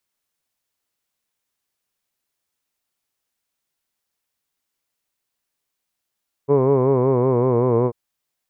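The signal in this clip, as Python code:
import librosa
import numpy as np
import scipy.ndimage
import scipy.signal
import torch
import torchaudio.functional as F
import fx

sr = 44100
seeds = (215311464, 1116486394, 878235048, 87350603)

y = fx.vowel(sr, seeds[0], length_s=1.44, word='hood', hz=137.0, glide_st=-2.5, vibrato_hz=5.3, vibrato_st=0.9)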